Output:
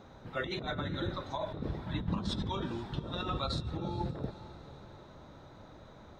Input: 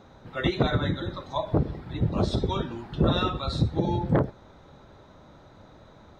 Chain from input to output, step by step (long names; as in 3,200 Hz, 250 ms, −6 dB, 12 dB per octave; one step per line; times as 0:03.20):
compressor whose output falls as the input rises −30 dBFS, ratio −1
0:01.87–0:02.52: thirty-one-band graphic EQ 200 Hz +8 dB, 400 Hz −6 dB, 630 Hz −9 dB, 1,000 Hz +8 dB, 1,600 Hz +7 dB, 3,150 Hz +7 dB
feedback delay with all-pass diffusion 461 ms, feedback 48%, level −16 dB
level −6 dB